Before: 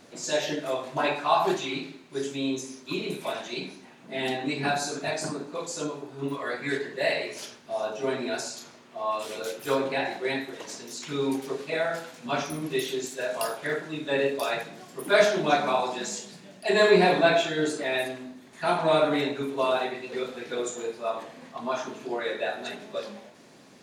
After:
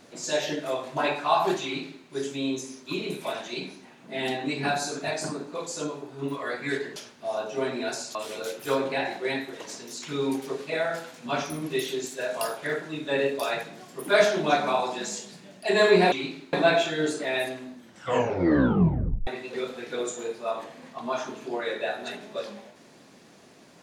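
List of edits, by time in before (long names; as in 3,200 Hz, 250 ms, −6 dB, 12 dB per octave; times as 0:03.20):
0:01.64–0:02.05: duplicate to 0:17.12
0:06.96–0:07.42: remove
0:08.61–0:09.15: remove
0:18.33: tape stop 1.53 s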